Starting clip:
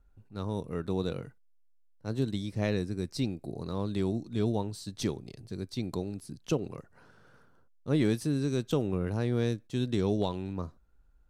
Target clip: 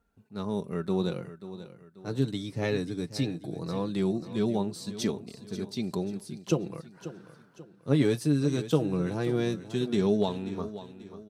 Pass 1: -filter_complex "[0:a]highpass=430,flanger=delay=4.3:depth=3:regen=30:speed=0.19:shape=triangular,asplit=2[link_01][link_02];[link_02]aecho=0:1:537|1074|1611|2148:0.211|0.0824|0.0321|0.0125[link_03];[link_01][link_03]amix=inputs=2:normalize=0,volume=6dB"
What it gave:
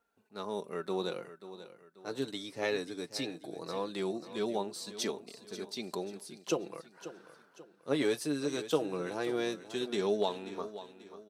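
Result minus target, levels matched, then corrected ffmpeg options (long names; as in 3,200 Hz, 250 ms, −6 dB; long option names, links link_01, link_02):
125 Hz band −11.0 dB
-filter_complex "[0:a]highpass=110,flanger=delay=4.3:depth=3:regen=30:speed=0.19:shape=triangular,asplit=2[link_01][link_02];[link_02]aecho=0:1:537|1074|1611|2148:0.211|0.0824|0.0321|0.0125[link_03];[link_01][link_03]amix=inputs=2:normalize=0,volume=6dB"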